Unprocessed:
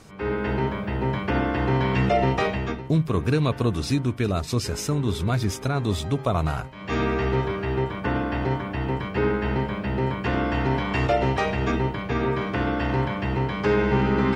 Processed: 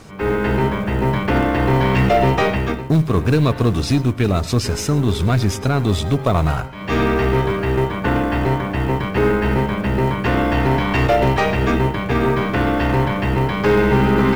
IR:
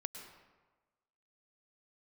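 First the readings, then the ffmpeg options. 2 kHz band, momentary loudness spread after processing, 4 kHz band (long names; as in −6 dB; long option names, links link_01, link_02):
+6.5 dB, 5 LU, +6.0 dB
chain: -filter_complex "[0:a]acrusher=bits=7:mode=log:mix=0:aa=0.000001,aeval=exprs='0.316*(cos(1*acos(clip(val(0)/0.316,-1,1)))-cos(1*PI/2))+0.02*(cos(5*acos(clip(val(0)/0.316,-1,1)))-cos(5*PI/2))+0.0126*(cos(8*acos(clip(val(0)/0.316,-1,1)))-cos(8*PI/2))':channel_layout=same,asplit=2[link_01][link_02];[1:a]atrim=start_sample=2205,afade=type=out:start_time=0.17:duration=0.01,atrim=end_sample=7938,highshelf=frequency=7200:gain=-11.5[link_03];[link_02][link_03]afir=irnorm=-1:irlink=0,volume=1.5dB[link_04];[link_01][link_04]amix=inputs=2:normalize=0"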